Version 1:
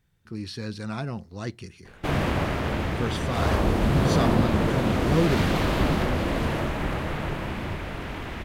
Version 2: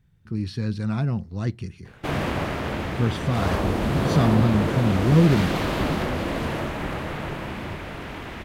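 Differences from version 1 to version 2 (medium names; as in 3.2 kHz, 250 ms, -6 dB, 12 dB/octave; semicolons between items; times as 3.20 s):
speech: add tone controls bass +12 dB, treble -4 dB; master: add bass shelf 68 Hz -7.5 dB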